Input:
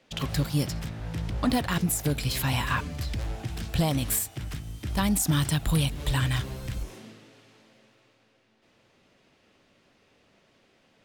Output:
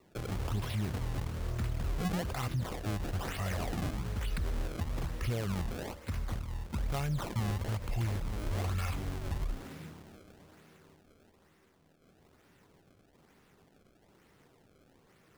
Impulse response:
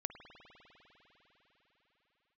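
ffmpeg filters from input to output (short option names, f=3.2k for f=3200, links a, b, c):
-af "alimiter=level_in=2dB:limit=-24dB:level=0:latency=1:release=41,volume=-2dB,asetrate=31664,aresample=44100,highshelf=f=8.3k:g=-11.5,acrusher=samples=27:mix=1:aa=0.000001:lfo=1:lforange=43.2:lforate=1.1"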